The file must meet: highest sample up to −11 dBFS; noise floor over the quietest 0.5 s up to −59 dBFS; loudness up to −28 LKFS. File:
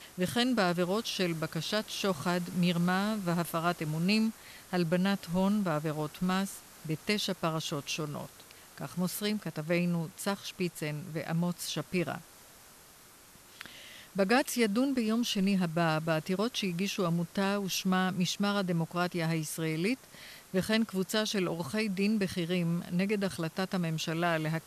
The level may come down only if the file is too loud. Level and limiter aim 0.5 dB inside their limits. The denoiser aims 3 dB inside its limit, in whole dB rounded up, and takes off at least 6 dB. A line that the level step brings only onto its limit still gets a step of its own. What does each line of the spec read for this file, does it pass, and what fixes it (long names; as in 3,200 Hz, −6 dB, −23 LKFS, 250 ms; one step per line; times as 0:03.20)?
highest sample −14.0 dBFS: in spec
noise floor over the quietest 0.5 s −56 dBFS: out of spec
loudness −31.5 LKFS: in spec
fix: broadband denoise 6 dB, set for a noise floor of −56 dBFS